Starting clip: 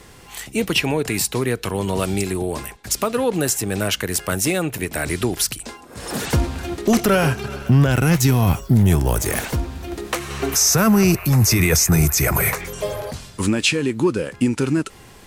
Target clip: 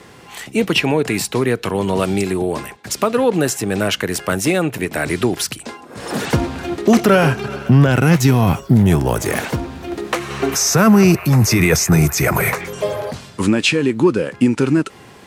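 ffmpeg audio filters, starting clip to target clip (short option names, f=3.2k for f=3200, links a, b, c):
-af "highpass=120,aemphasis=mode=reproduction:type=cd,volume=4.5dB"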